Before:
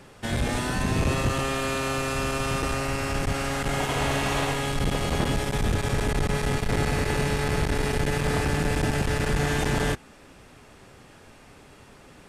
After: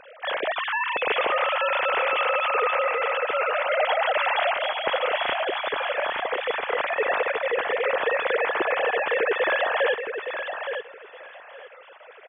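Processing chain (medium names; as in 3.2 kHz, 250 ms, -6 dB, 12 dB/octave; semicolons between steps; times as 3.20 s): formants replaced by sine waves; on a send: feedback delay 867 ms, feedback 19%, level -7.5 dB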